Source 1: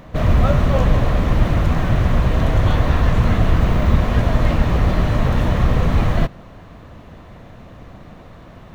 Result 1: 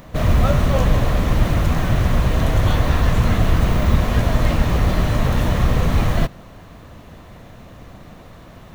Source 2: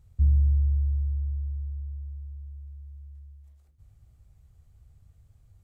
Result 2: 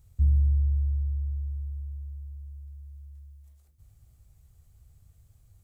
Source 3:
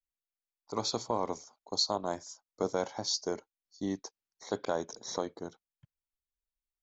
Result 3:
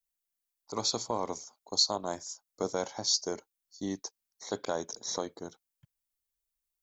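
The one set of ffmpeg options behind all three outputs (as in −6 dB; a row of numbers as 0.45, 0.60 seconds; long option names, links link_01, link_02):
-af "highshelf=frequency=5500:gain=12,volume=-1dB"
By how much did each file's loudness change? −1.0, −1.0, +2.0 LU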